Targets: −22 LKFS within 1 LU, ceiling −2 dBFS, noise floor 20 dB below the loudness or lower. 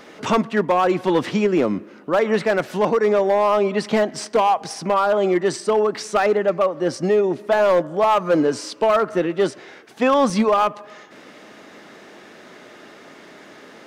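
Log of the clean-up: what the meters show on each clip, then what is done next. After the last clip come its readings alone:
share of clipped samples 1.5%; peaks flattened at −11.0 dBFS; number of dropouts 1; longest dropout 1.9 ms; integrated loudness −19.5 LKFS; sample peak −11.0 dBFS; target loudness −22.0 LKFS
→ clipped peaks rebuilt −11 dBFS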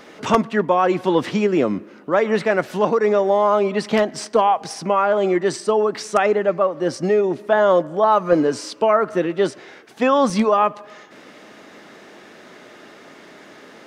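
share of clipped samples 0.0%; number of dropouts 1; longest dropout 1.9 ms
→ repair the gap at 0:10.30, 1.9 ms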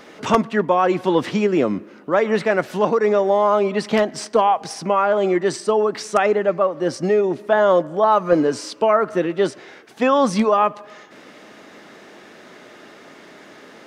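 number of dropouts 0; integrated loudness −19.0 LKFS; sample peak −2.0 dBFS; target loudness −22.0 LKFS
→ level −3 dB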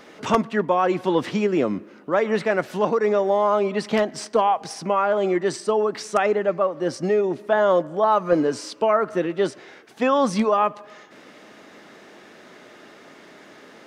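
integrated loudness −22.0 LKFS; sample peak −5.0 dBFS; background noise floor −48 dBFS

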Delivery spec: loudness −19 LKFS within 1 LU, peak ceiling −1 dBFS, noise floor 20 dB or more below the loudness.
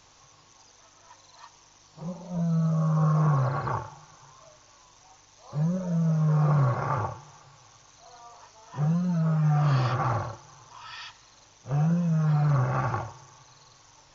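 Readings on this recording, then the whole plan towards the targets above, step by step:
integrated loudness −26.0 LKFS; sample peak −13.5 dBFS; target loudness −19.0 LKFS
→ level +7 dB

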